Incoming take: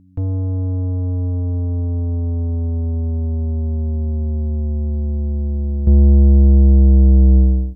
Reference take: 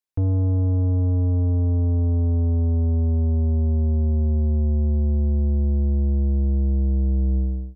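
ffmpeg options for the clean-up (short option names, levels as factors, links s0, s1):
-af "bandreject=f=92.3:t=h:w=4,bandreject=f=184.6:t=h:w=4,bandreject=f=276.9:t=h:w=4,asetnsamples=n=441:p=0,asendcmd='5.87 volume volume -10.5dB',volume=1"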